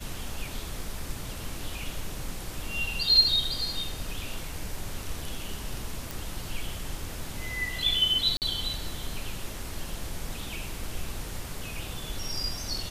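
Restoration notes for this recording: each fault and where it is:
0:06.11: click
0:08.37–0:08.42: drop-out 48 ms

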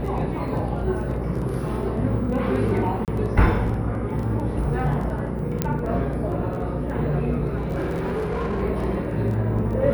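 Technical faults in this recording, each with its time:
mains buzz 60 Hz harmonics 9 −29 dBFS
surface crackle 14 per second
0:03.05–0:03.08: drop-out 28 ms
0:05.62: click −7 dBFS
0:07.57–0:08.63: clipping −21.5 dBFS

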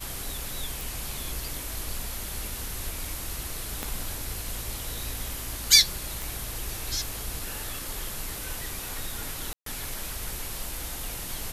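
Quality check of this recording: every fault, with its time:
0:00.81: click
0:03.83: click −15 dBFS
0:06.22: click
0:09.53–0:09.66: drop-out 133 ms

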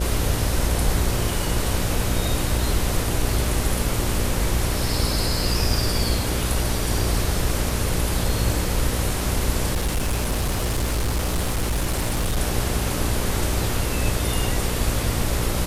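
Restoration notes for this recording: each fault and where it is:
mains buzz 60 Hz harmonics 10 −27 dBFS
0:09.73–0:12.38: clipping −18.5 dBFS

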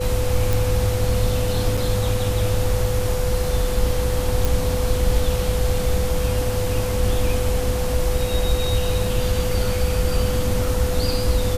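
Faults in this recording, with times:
whistle 500 Hz −25 dBFS
0:00.53: click
0:01.77–0:01.78: drop-out 5.1 ms
0:04.45: click

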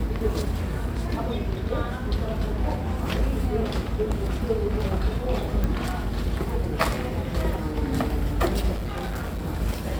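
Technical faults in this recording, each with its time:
0:05.64: click −14 dBFS
0:08.73–0:09.46: clipping −26 dBFS

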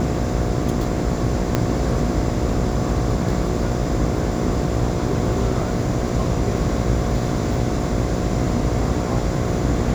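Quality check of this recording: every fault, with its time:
mains buzz 60 Hz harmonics 12 −25 dBFS
0:01.55: click −5 dBFS

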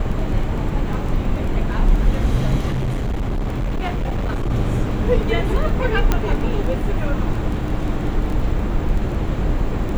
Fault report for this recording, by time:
surface crackle 12 per second
0:02.70–0:04.51: clipping −18 dBFS
0:06.12: click −4 dBFS

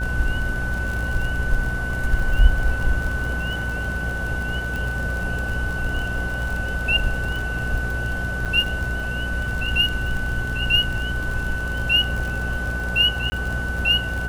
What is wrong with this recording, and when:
mains buzz 60 Hz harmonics 15 −28 dBFS
surface crackle 42 per second −26 dBFS
whistle 1,500 Hz −27 dBFS
0:04.76: click
0:08.45–0:08.46: drop-out 6.9 ms
0:13.30–0:13.32: drop-out 20 ms

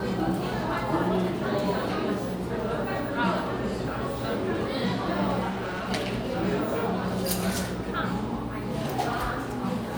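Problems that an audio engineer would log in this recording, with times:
0:05.49–0:05.92: clipping −28.5 dBFS

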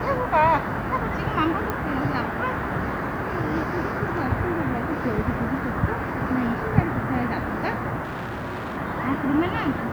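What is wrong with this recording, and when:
0:01.70: click −13 dBFS
0:08.03–0:08.78: clipping −27.5 dBFS

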